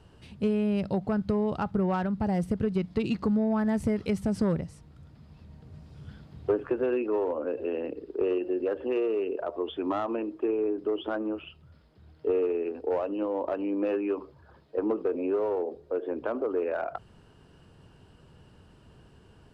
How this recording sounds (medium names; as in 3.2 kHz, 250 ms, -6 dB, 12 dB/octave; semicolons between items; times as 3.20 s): noise floor -57 dBFS; spectral tilt -5.5 dB/octave